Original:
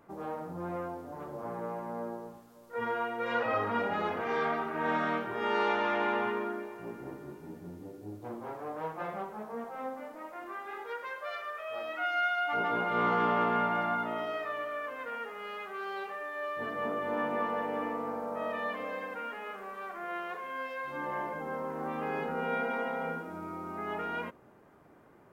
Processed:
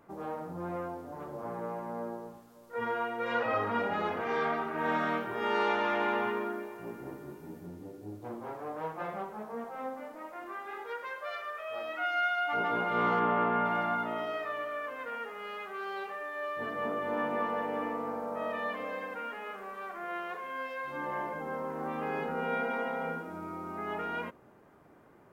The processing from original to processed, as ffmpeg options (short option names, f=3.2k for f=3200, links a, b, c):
-filter_complex "[0:a]asettb=1/sr,asplit=3[a][b][c];[a]atrim=end=4.784[d];[b]atrim=start=4.78:end=7.66,asetpts=PTS-STARTPTS,afade=t=in:d=0.004:c=qsin,afade=t=out:st=2.876:d=0.004:c=qsin,highshelf=f=11k:g=7[e];[c]atrim=start=7.656[f];[d][e]acrossfade=d=0.004:c1=hsin:c2=qsin[g];[g][f]acrossfade=d=0.004:c1=qsin:c2=hsin,asplit=3[h][i][j];[h]afade=t=out:st=13.19:d=0.02[k];[i]lowpass=2.5k,afade=t=in:st=13.19:d=0.02,afade=t=out:st=13.64:d=0.02[l];[j]afade=t=in:st=13.64:d=0.02[m];[k][l][m]amix=inputs=3:normalize=0"